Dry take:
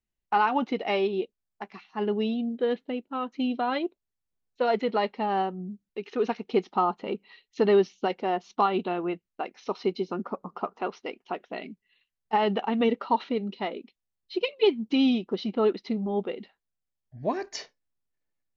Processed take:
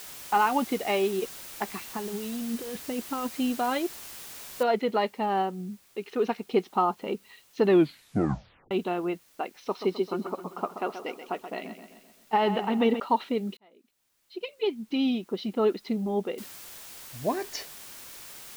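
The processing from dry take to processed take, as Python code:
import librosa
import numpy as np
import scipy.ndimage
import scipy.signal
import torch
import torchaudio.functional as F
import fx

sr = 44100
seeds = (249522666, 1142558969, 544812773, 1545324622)

y = fx.over_compress(x, sr, threshold_db=-34.0, ratio=-1.0, at=(1.19, 3.36), fade=0.02)
y = fx.noise_floor_step(y, sr, seeds[0], at_s=4.63, before_db=-43, after_db=-62, tilt_db=0.0)
y = fx.echo_feedback(y, sr, ms=130, feedback_pct=52, wet_db=-10.0, at=(9.55, 13.0))
y = fx.noise_floor_step(y, sr, seeds[1], at_s=16.38, before_db=-68, after_db=-45, tilt_db=0.0)
y = fx.edit(y, sr, fx.tape_stop(start_s=7.65, length_s=1.06),
    fx.fade_in_span(start_s=13.57, length_s=2.23), tone=tone)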